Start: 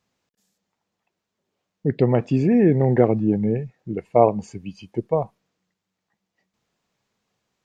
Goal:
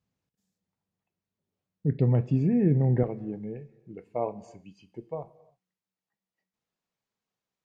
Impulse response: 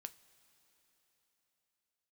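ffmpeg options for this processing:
-filter_complex "[0:a]asetnsamples=n=441:p=0,asendcmd='3.03 equalizer g -2',equalizer=f=86:w=0.42:g=15[a];[1:a]atrim=start_sample=2205,afade=t=out:st=0.38:d=0.01,atrim=end_sample=17199[b];[a][b]afir=irnorm=-1:irlink=0,volume=-8.5dB"

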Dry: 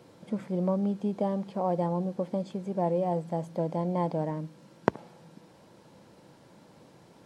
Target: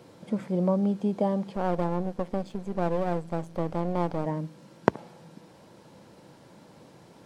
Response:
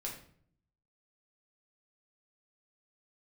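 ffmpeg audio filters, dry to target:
-filter_complex "[0:a]asettb=1/sr,asplit=3[a][b][c];[a]atrim=end=1.564[d];[b]atrim=start=1.56:end=4.26,asetpts=PTS-STARTPTS,afade=t=in:d=0.004:c=qsin,afade=t=out:st=2.696:d=0.004:c=qsin,aeval=exprs='if(lt(val(0),0),0.251*val(0),val(0))':c=same[e];[c]atrim=start=4.256[f];[d][e]acrossfade=d=0.004:c1=hsin:c2=qsin[g];[g][f]acrossfade=d=0.004:c1=qsin:c2=hsin,volume=3dB"

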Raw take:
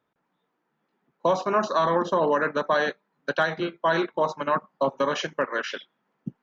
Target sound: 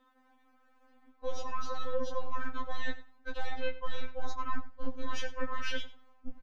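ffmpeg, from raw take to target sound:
-filter_complex "[0:a]aeval=exprs='if(lt(val(0),0),0.708*val(0),val(0))':c=same,acrossover=split=300|3000[a][b][c];[b]acompressor=threshold=-27dB:ratio=6[d];[a][d][c]amix=inputs=3:normalize=0,alimiter=level_in=3dB:limit=-24dB:level=0:latency=1:release=145,volume=-3dB,areverse,acompressor=threshold=-44dB:ratio=6,areverse,bass=f=250:g=0,treble=f=4k:g=-4,asplit=2[e][f];[f]aecho=0:1:95|190:0.15|0.0224[g];[e][g]amix=inputs=2:normalize=0,asubboost=boost=6:cutoff=97,afftfilt=real='re*3.46*eq(mod(b,12),0)':imag='im*3.46*eq(mod(b,12),0)':win_size=2048:overlap=0.75,volume=12dB"

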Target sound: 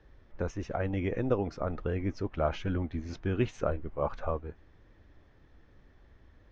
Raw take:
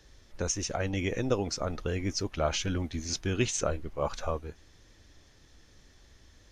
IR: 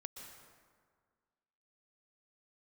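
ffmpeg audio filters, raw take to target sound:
-af "lowpass=1.7k"

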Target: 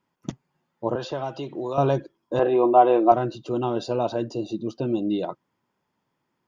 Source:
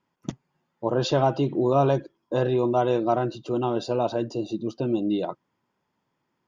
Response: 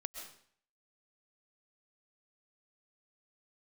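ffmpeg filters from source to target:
-filter_complex "[0:a]asettb=1/sr,asplit=3[a][b][c];[a]atrim=end=0.954[d];[b]atrim=start=0.95:end=1.78,asetpts=PTS-STARTPTS,afade=t=in:d=0.004:c=qsin,afade=t=out:st=0.826:d=0.004:c=qsin,acrossover=split=480|1900[e][f][g];[e]acompressor=threshold=-36dB:ratio=4[h];[f]acompressor=threshold=-30dB:ratio=4[i];[g]acompressor=threshold=-41dB:ratio=4[j];[h][i][j]amix=inputs=3:normalize=0[k];[c]atrim=start=1.776[l];[d][k]acrossfade=d=0.004:c1=hsin:c2=qsin[m];[m][l]acrossfade=d=0.004:c1=qsin:c2=hsin,asettb=1/sr,asplit=3[n][o][p];[n]atrim=end=2.394[q];[o]atrim=start=2.39:end=3.12,asetpts=PTS-STARTPTS,afade=t=in:d=0.004:c=qsin,afade=t=out:st=0.726:d=0.004:c=qsin,highpass=260,equalizer=f=330:t=q:w=4:g=7,equalizer=f=500:t=q:w=4:g=3,equalizer=f=730:t=q:w=4:g=10,equalizer=f=1.1k:t=q:w=4:g=7,equalizer=f=2.4k:t=q:w=4:g=3,lowpass=f=3.3k:w=0.5412,lowpass=f=3.3k:w=1.3066[r];[p]atrim=start=3.116[s];[q][r]acrossfade=d=0.004:c1=hsin:c2=qsin[t];[t][s]acrossfade=d=0.004:c1=qsin:c2=hsin"

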